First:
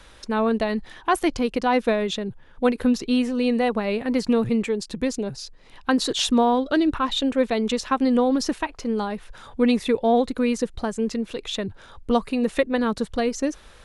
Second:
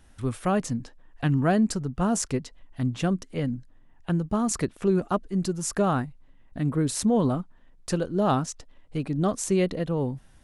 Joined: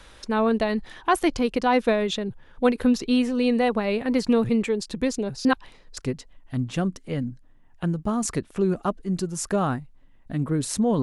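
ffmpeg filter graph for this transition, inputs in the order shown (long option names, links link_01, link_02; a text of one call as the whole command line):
ffmpeg -i cue0.wav -i cue1.wav -filter_complex "[0:a]apad=whole_dur=11.02,atrim=end=11.02,asplit=2[link_01][link_02];[link_01]atrim=end=5.452[link_03];[link_02]atrim=start=5.448:end=5.972,asetpts=PTS-STARTPTS,areverse[link_04];[1:a]atrim=start=2.228:end=7.28[link_05];[link_03][link_04]acrossfade=duration=0.004:curve1=hsin:curve2=hsin[link_06];[link_06][link_05]acrossfade=duration=0.004:curve1=hsin:curve2=hsin" out.wav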